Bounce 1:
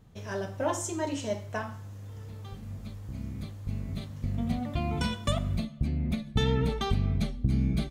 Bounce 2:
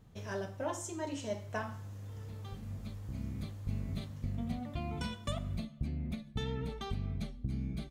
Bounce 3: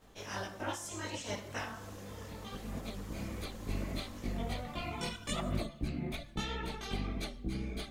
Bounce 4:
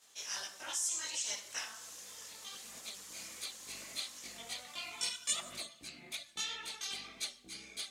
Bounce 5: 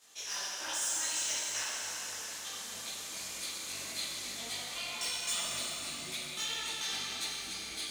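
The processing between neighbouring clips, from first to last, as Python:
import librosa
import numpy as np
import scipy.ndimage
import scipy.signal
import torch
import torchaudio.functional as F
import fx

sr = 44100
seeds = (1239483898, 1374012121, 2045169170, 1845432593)

y1 = fx.rider(x, sr, range_db=5, speed_s=0.5)
y1 = y1 * librosa.db_to_amplitude(-7.5)
y2 = fx.spec_clip(y1, sr, under_db=19)
y2 = fx.chorus_voices(y2, sr, voices=6, hz=1.5, base_ms=19, depth_ms=3.0, mix_pct=60)
y2 = y2 * librosa.db_to_amplitude(1.5)
y3 = fx.bandpass_q(y2, sr, hz=7400.0, q=1.1)
y3 = y3 * librosa.db_to_amplitude(11.0)
y4 = 10.0 ** (-33.5 / 20.0) * np.tanh(y3 / 10.0 ** (-33.5 / 20.0))
y4 = fx.rev_plate(y4, sr, seeds[0], rt60_s=4.7, hf_ratio=0.85, predelay_ms=0, drr_db=-3.5)
y4 = y4 * librosa.db_to_amplitude(2.0)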